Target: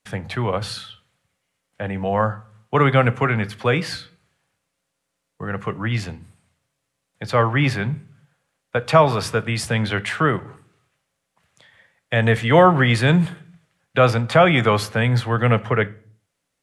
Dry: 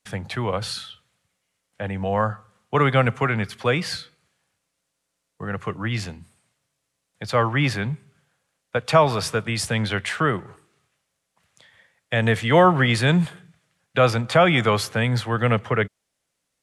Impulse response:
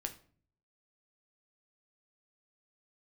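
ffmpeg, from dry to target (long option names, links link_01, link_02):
-filter_complex "[0:a]asplit=2[link_01][link_02];[1:a]atrim=start_sample=2205,afade=type=out:start_time=0.45:duration=0.01,atrim=end_sample=20286,lowpass=3900[link_03];[link_02][link_03]afir=irnorm=-1:irlink=0,volume=-4.5dB[link_04];[link_01][link_04]amix=inputs=2:normalize=0,volume=-1dB"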